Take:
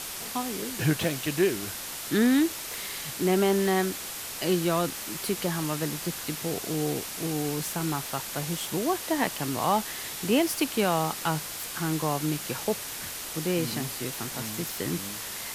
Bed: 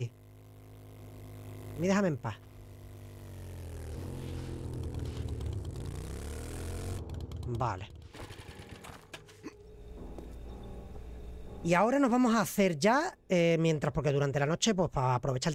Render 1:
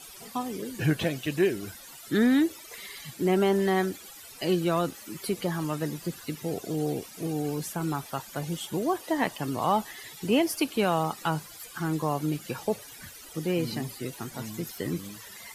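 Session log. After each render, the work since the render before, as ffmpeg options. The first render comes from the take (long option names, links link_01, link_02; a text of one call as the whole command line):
ffmpeg -i in.wav -af "afftdn=noise_reduction=16:noise_floor=-37" out.wav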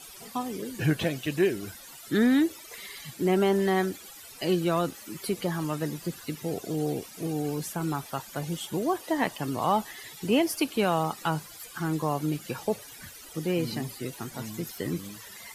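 ffmpeg -i in.wav -af anull out.wav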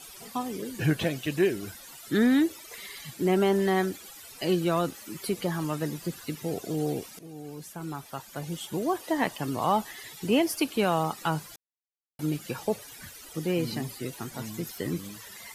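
ffmpeg -i in.wav -filter_complex "[0:a]asplit=4[link_01][link_02][link_03][link_04];[link_01]atrim=end=7.19,asetpts=PTS-STARTPTS,afade=type=out:start_time=7.186:duration=0.004:curve=hsin:silence=0.16788[link_05];[link_02]atrim=start=7.19:end=11.56,asetpts=PTS-STARTPTS,afade=type=in:duration=1.84:silence=0.16788,afade=type=out:start_time=4.366:duration=0.004:curve=hsin[link_06];[link_03]atrim=start=11.56:end=12.19,asetpts=PTS-STARTPTS,volume=0[link_07];[link_04]atrim=start=12.19,asetpts=PTS-STARTPTS,afade=type=in:duration=0.004:curve=hsin[link_08];[link_05][link_06][link_07][link_08]concat=n=4:v=0:a=1" out.wav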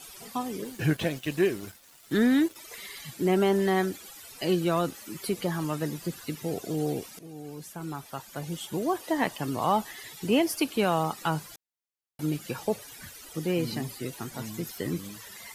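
ffmpeg -i in.wav -filter_complex "[0:a]asettb=1/sr,asplit=3[link_01][link_02][link_03];[link_01]atrim=end=0.644[link_04];[link_02]atrim=start=0.64:end=2.56,asetpts=PTS-STARTPTS,afade=type=in:duration=0.004:curve=qsin,afade=type=out:start_time=1.916:duration=0.004:curve=qsin,aeval=exprs='sgn(val(0))*max(abs(val(0))-0.00501,0)':channel_layout=same[link_05];[link_03]atrim=start=2.556[link_06];[link_04][link_05]acrossfade=duration=0.004:curve1=hsin:curve2=qsin[link_07];[link_07][link_06]acrossfade=duration=0.004:curve1=qsin:curve2=hsin" out.wav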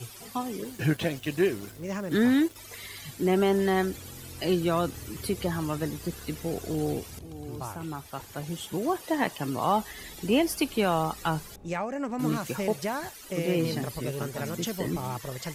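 ffmpeg -i in.wav -i bed.wav -filter_complex "[1:a]volume=-5.5dB[link_01];[0:a][link_01]amix=inputs=2:normalize=0" out.wav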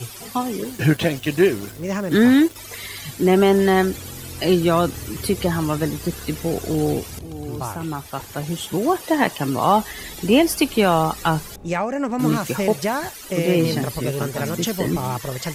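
ffmpeg -i in.wav -af "volume=8.5dB" out.wav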